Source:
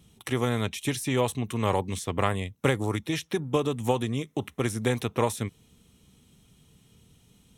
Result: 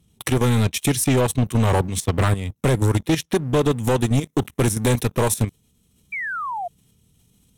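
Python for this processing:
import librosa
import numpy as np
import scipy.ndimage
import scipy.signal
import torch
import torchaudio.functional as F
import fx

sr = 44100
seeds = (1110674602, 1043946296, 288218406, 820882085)

y = fx.low_shelf(x, sr, hz=310.0, db=7.0)
y = fx.level_steps(y, sr, step_db=12)
y = fx.high_shelf(y, sr, hz=5800.0, db=fx.steps((0.0, 6.0), (4.0, 11.5)))
y = fx.leveller(y, sr, passes=2)
y = fx.transient(y, sr, attack_db=1, sustain_db=-3)
y = fx.spec_paint(y, sr, seeds[0], shape='fall', start_s=6.12, length_s=0.56, low_hz=670.0, high_hz=2400.0, level_db=-31.0)
y = fx.fold_sine(y, sr, drive_db=4, ceiling_db=-9.0)
y = y * 10.0 ** (-4.0 / 20.0)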